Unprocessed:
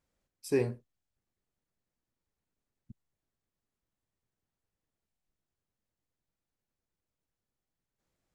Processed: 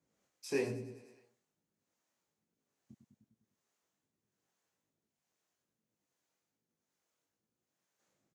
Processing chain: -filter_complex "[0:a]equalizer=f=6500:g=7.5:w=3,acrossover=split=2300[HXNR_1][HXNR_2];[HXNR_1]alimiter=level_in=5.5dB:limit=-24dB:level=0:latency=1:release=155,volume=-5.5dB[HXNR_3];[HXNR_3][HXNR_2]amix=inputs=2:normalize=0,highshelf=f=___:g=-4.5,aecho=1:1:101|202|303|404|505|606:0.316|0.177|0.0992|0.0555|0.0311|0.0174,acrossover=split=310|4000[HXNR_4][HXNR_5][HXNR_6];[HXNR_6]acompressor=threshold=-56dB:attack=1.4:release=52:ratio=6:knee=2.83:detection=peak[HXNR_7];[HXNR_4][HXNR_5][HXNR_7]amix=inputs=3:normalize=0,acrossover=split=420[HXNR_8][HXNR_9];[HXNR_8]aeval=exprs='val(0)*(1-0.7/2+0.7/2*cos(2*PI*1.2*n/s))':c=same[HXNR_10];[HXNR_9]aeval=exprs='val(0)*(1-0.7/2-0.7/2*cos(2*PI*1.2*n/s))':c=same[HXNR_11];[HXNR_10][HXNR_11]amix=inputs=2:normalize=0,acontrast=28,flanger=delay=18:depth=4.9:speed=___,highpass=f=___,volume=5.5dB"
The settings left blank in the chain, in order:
5000, 1.2, 170